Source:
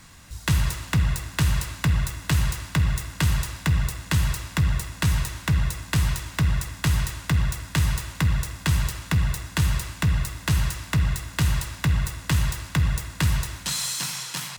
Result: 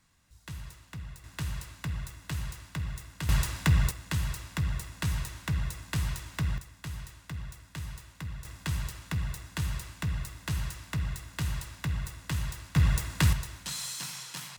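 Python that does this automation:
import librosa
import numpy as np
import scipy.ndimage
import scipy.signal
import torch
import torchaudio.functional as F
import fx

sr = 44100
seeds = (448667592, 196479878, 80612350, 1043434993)

y = fx.gain(x, sr, db=fx.steps((0.0, -20.0), (1.24, -13.0), (3.29, -1.5), (3.91, -8.5), (6.58, -17.0), (8.45, -10.0), (12.76, -1.5), (13.33, -9.0)))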